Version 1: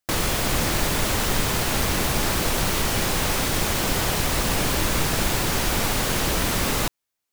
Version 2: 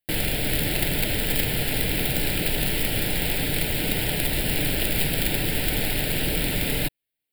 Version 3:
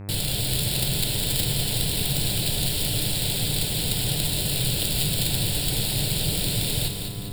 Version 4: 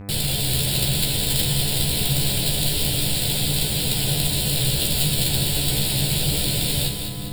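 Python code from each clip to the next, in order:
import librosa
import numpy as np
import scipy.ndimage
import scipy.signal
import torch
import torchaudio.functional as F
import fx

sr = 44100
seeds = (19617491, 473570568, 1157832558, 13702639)

y1 = x + 0.3 * np.pad(x, (int(6.7 * sr / 1000.0), 0))[:len(x)]
y1 = (np.mod(10.0 ** (14.0 / 20.0) * y1 + 1.0, 2.0) - 1.0) / 10.0 ** (14.0 / 20.0)
y1 = fx.fixed_phaser(y1, sr, hz=2700.0, stages=4)
y2 = fx.graphic_eq(y1, sr, hz=(125, 250, 2000, 4000, 8000), db=(10, -6, -10, 10, 10))
y2 = fx.dmg_buzz(y2, sr, base_hz=100.0, harmonics=26, level_db=-32.0, tilt_db=-8, odd_only=False)
y2 = fx.echo_split(y2, sr, split_hz=310.0, low_ms=613, high_ms=203, feedback_pct=52, wet_db=-6.5)
y2 = y2 * 10.0 ** (-5.0 / 20.0)
y3 = fx.doubler(y2, sr, ms=14.0, db=-3.5)
y3 = y3 * 10.0 ** (1.5 / 20.0)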